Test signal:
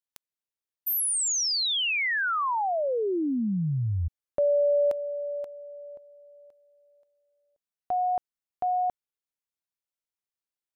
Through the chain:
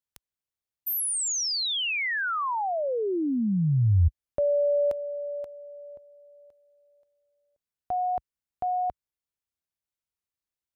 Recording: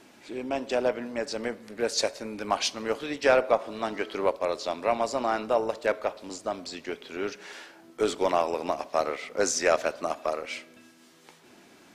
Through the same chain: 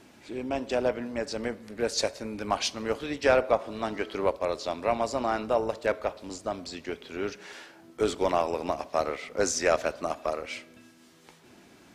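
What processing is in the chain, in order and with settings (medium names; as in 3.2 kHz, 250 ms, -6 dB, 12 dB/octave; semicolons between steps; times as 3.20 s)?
peaking EQ 61 Hz +11.5 dB 2.4 oct; trim -1.5 dB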